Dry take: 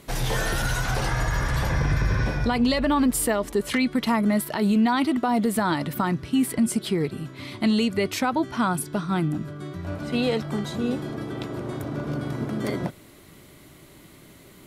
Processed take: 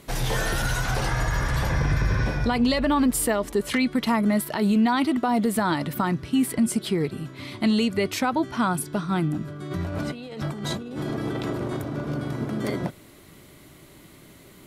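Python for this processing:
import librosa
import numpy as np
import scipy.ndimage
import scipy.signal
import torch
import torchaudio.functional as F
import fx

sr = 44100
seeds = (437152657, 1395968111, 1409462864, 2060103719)

y = fx.over_compress(x, sr, threshold_db=-34.0, ratio=-1.0, at=(9.7, 11.8), fade=0.02)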